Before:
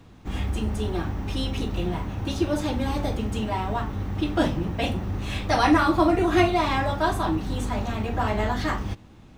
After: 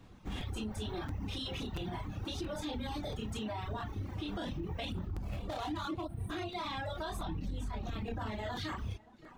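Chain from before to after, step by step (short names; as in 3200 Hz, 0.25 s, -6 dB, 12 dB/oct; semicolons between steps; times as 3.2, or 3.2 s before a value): 5.05–6.03 median filter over 25 samples; 6.04–6.3 spectral gain 270–8200 Hz -20 dB; tape echo 0.569 s, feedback 63%, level -23 dB, low-pass 4900 Hz; chorus voices 2, 0.4 Hz, delay 28 ms, depth 4.8 ms; reverb removal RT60 0.94 s; 7.23–8.31 low shelf 240 Hz +8.5 dB; compressor 4:1, threshold -26 dBFS, peak gain reduction 9 dB; dynamic EQ 3600 Hz, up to +8 dB, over -58 dBFS, Q 2.7; limiter -28.5 dBFS, peak gain reduction 11.5 dB; crackling interface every 0.68 s, samples 256, repeat, from 0.4; gain -2 dB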